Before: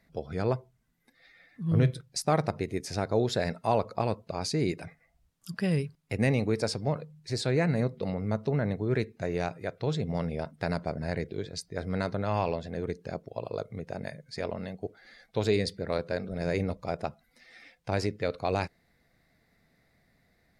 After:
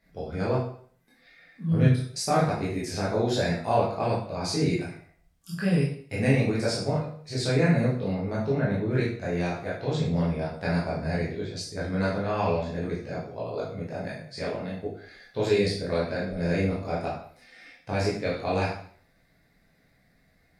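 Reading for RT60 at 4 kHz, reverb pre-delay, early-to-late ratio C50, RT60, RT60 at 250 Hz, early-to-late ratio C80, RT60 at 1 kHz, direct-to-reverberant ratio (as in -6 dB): 0.50 s, 7 ms, 3.5 dB, 0.55 s, 0.50 s, 7.5 dB, 0.50 s, -7.5 dB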